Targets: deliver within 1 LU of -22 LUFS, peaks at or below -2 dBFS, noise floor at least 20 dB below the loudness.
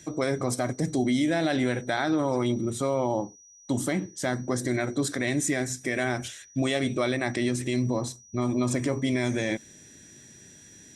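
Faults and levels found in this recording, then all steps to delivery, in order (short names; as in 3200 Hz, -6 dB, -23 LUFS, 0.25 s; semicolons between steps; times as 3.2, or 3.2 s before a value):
steady tone 5800 Hz; tone level -51 dBFS; loudness -27.5 LUFS; peak -14.0 dBFS; loudness target -22.0 LUFS
-> notch 5800 Hz, Q 30; gain +5.5 dB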